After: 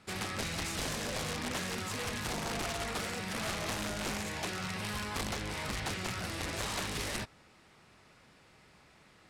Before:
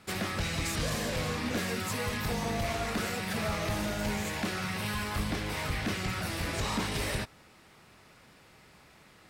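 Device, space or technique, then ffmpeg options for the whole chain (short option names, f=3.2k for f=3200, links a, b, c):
overflowing digital effects unit: -af "aeval=exprs='(mod(18.8*val(0)+1,2)-1)/18.8':c=same,lowpass=10k,volume=-3.5dB"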